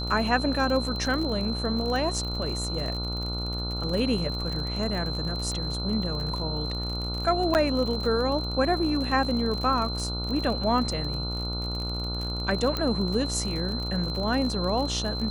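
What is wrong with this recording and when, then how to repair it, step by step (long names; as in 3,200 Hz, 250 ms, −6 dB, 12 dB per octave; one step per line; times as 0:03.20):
mains buzz 60 Hz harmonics 24 −32 dBFS
surface crackle 42 per second −31 dBFS
whistle 4,100 Hz −33 dBFS
0:07.54–0:07.55: drop-out 9.3 ms
0:12.77: click −14 dBFS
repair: click removal
notch filter 4,100 Hz, Q 30
hum removal 60 Hz, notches 24
repair the gap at 0:07.54, 9.3 ms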